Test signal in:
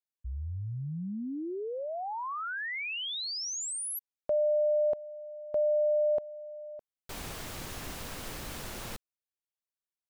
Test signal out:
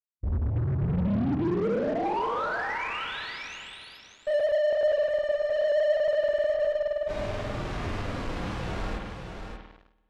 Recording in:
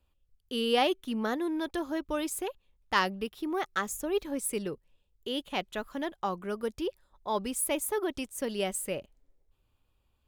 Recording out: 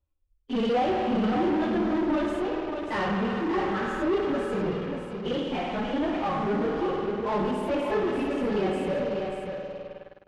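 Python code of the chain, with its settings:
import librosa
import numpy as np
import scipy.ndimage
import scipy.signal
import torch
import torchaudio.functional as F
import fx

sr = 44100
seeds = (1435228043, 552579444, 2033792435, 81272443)

p1 = fx.phase_scramble(x, sr, seeds[0], window_ms=50)
p2 = fx.rev_spring(p1, sr, rt60_s=2.4, pass_ms=(51,), chirp_ms=50, drr_db=4.5)
p3 = fx.hpss(p2, sr, part='percussive', gain_db=-16)
p4 = fx.fuzz(p3, sr, gain_db=44.0, gate_db=-51.0)
p5 = p3 + F.gain(torch.from_numpy(p4), -9.5).numpy()
p6 = fx.spacing_loss(p5, sr, db_at_10k=27)
p7 = p6 + fx.echo_single(p6, sr, ms=588, db=-6.5, dry=0)
y = F.gain(torch.from_numpy(p7), -3.5).numpy()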